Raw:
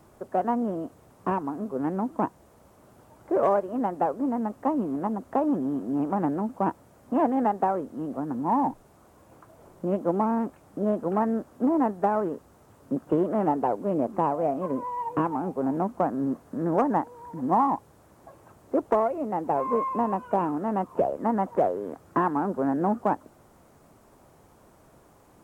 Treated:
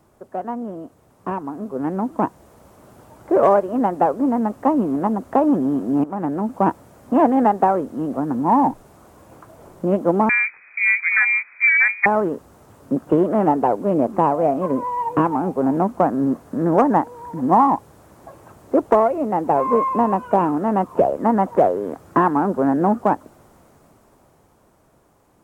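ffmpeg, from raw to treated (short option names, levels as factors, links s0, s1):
-filter_complex "[0:a]asettb=1/sr,asplit=3[s0][s1][s2];[s0]atrim=end=10.294[s3];[s1]atrim=start=10.29:end=12.06,asetpts=PTS-STARTPTS,afade=t=in:d=0.004:c=qsin,afade=t=out:st=1.766:d=0.004:c=qsin,lowpass=f=2200:t=q:w=0.5098,lowpass=f=2200:t=q:w=0.6013,lowpass=f=2200:t=q:w=0.9,lowpass=f=2200:t=q:w=2.563,afreqshift=-2600[s4];[s2]atrim=start=12.056[s5];[s3][s4]acrossfade=d=0.004:c1=hsin:c2=qsin[s6];[s6][s5]acrossfade=d=0.004:c1=qsin:c2=hsin,asplit=2[s7][s8];[s7]atrim=end=6.04,asetpts=PTS-STARTPTS,afade=t=out:st=6.036:d=0.004:c=hsin:silence=0.223872[s9];[s8]atrim=start=6.04,asetpts=PTS-STARTPTS,afade=t=in:d=0.56:silence=0.223872[s10];[s9][s10]concat=n=2:v=0:a=1,dynaudnorm=f=120:g=31:m=3.98,volume=0.794"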